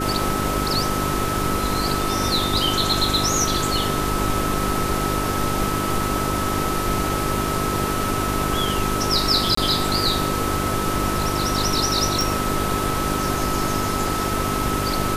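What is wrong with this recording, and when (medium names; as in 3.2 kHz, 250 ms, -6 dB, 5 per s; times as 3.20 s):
hum 50 Hz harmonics 8 -27 dBFS
whine 1.3 kHz -26 dBFS
9.55–9.57 s: dropout 24 ms
12.21 s: pop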